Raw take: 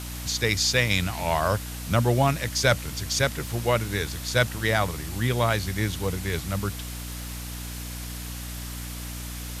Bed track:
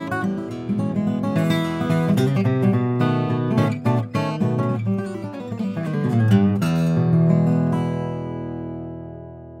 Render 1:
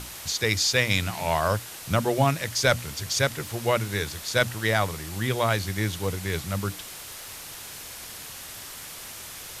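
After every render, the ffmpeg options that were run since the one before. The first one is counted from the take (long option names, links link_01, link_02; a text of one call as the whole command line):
ffmpeg -i in.wav -af "bandreject=frequency=60:width_type=h:width=6,bandreject=frequency=120:width_type=h:width=6,bandreject=frequency=180:width_type=h:width=6,bandreject=frequency=240:width_type=h:width=6,bandreject=frequency=300:width_type=h:width=6" out.wav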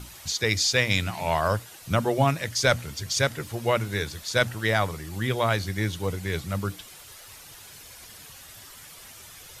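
ffmpeg -i in.wav -af "afftdn=noise_reduction=9:noise_floor=-41" out.wav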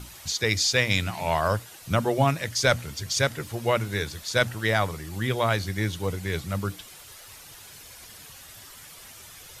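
ffmpeg -i in.wav -af anull out.wav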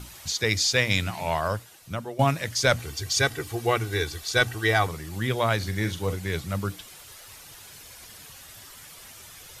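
ffmpeg -i in.wav -filter_complex "[0:a]asettb=1/sr,asplit=3[link_01][link_02][link_03];[link_01]atrim=end=2.794[link_04];[link_02]atrim=start=2.79:end=4.87,asetpts=PTS-STARTPTS,afade=type=in:duration=0.004:curve=qsin,afade=type=out:start_time=2.076:duration=0.004:curve=qsin,aecho=1:1:2.6:0.65,atrim=end_sample=91728[link_05];[link_03]atrim=start=4.866[link_06];[link_04][link_05]acrossfade=duration=0.004:curve1=hsin:curve2=qsin[link_07];[link_07][link_06]acrossfade=duration=0.004:curve1=qsin:curve2=hsin,asettb=1/sr,asplit=3[link_08][link_09][link_10];[link_08]atrim=end=5.574[link_11];[link_09]atrim=start=5.57:end=6.14,asetpts=PTS-STARTPTS,afade=type=in:duration=0.004:curve=qsin,afade=type=out:start_time=0.566:duration=0.004:curve=qsin,asplit=2[link_12][link_13];[link_13]adelay=43,volume=-10dB[link_14];[link_12][link_14]amix=inputs=2:normalize=0,atrim=end_sample=25137[link_15];[link_10]atrim=start=6.136[link_16];[link_11][link_15]acrossfade=duration=0.004:curve1=hsin:curve2=qsin[link_17];[link_17][link_16]acrossfade=duration=0.004:curve1=qsin:curve2=hsin,asplit=2[link_18][link_19];[link_18]atrim=end=2.19,asetpts=PTS-STARTPTS,afade=type=out:start_time=1.08:duration=1.11:silence=0.211349[link_20];[link_19]atrim=start=2.19,asetpts=PTS-STARTPTS,afade=type=in:duration=0.004:curve=hsin:silence=0.211349[link_21];[link_20][link_21]concat=n=2:v=0:a=1" out.wav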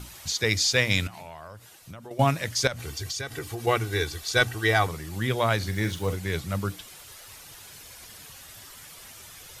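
ffmpeg -i in.wav -filter_complex "[0:a]asettb=1/sr,asplit=3[link_01][link_02][link_03];[link_01]atrim=end=1.074[link_04];[link_02]atrim=start=1.07:end=2.11,asetpts=PTS-STARTPTS,afade=type=in:duration=0.004:curve=qsin,afade=type=out:start_time=1.036:duration=0.004:curve=qsin,acompressor=threshold=-38dB:ratio=8:attack=3.2:release=140:knee=1:detection=peak[link_05];[link_03]atrim=start=2.106[link_06];[link_04][link_05]acrossfade=duration=0.004:curve1=hsin:curve2=qsin[link_07];[link_07][link_06]acrossfade=duration=0.004:curve1=qsin:curve2=hsin,asettb=1/sr,asplit=3[link_08][link_09][link_10];[link_08]atrim=end=2.674[link_11];[link_09]atrim=start=2.67:end=3.67,asetpts=PTS-STARTPTS,afade=type=in:duration=0.004:curve=qsin,afade=type=out:start_time=0.996:duration=0.004:curve=qsin,acompressor=threshold=-28dB:ratio=16:attack=3.2:release=140:knee=1:detection=peak[link_12];[link_10]atrim=start=3.666[link_13];[link_11][link_12]acrossfade=duration=0.004:curve1=hsin:curve2=qsin[link_14];[link_14][link_13]acrossfade=duration=0.004:curve1=qsin:curve2=hsin,asettb=1/sr,asplit=3[link_15][link_16][link_17];[link_15]atrim=end=5.684[link_18];[link_16]atrim=start=5.68:end=6.16,asetpts=PTS-STARTPTS,afade=type=in:duration=0.004:curve=qsin,afade=type=out:start_time=0.476:duration=0.004:curve=qsin,aeval=exprs='val(0)*gte(abs(val(0)),0.00531)':channel_layout=same[link_19];[link_17]atrim=start=6.156[link_20];[link_18][link_19]acrossfade=duration=0.004:curve1=hsin:curve2=qsin[link_21];[link_21][link_20]acrossfade=duration=0.004:curve1=qsin:curve2=hsin" out.wav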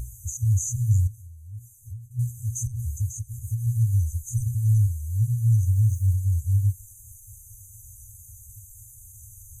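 ffmpeg -i in.wav -af "afftfilt=real='re*(1-between(b*sr/4096,120,6000))':imag='im*(1-between(b*sr/4096,120,6000))':win_size=4096:overlap=0.75,lowshelf=frequency=290:width_type=q:width=3:gain=9.5" out.wav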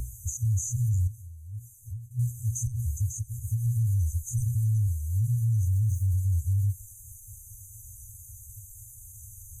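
ffmpeg -i in.wav -filter_complex "[0:a]alimiter=limit=-20dB:level=0:latency=1:release=30,acrossover=split=190[link_01][link_02];[link_02]acompressor=threshold=-31dB:ratio=2.5[link_03];[link_01][link_03]amix=inputs=2:normalize=0" out.wav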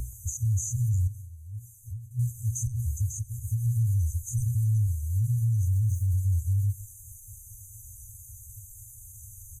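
ffmpeg -i in.wav -filter_complex "[0:a]asplit=2[link_01][link_02];[link_02]adelay=128,lowpass=frequency=2000:poles=1,volume=-21dB,asplit=2[link_03][link_04];[link_04]adelay=128,lowpass=frequency=2000:poles=1,volume=0.38,asplit=2[link_05][link_06];[link_06]adelay=128,lowpass=frequency=2000:poles=1,volume=0.38[link_07];[link_01][link_03][link_05][link_07]amix=inputs=4:normalize=0" out.wav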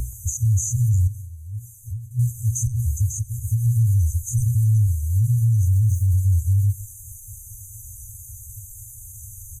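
ffmpeg -i in.wav -af "volume=7dB" out.wav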